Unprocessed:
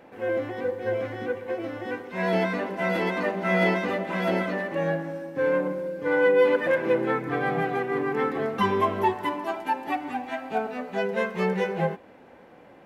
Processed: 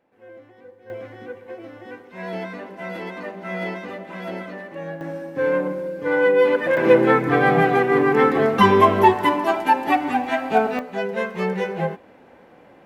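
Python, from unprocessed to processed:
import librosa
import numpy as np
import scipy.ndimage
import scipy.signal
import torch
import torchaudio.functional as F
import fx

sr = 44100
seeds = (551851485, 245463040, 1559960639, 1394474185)

y = fx.gain(x, sr, db=fx.steps((0.0, -17.0), (0.9, -6.0), (5.01, 3.0), (6.77, 9.5), (10.79, 1.5)))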